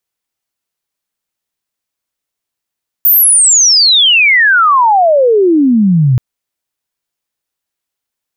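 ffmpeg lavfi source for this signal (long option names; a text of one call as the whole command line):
ffmpeg -f lavfi -i "aevalsrc='pow(10,(-4-1.5*t/3.13)/20)*sin(2*PI*15000*3.13/log(120/15000)*(exp(log(120/15000)*t/3.13)-1))':duration=3.13:sample_rate=44100" out.wav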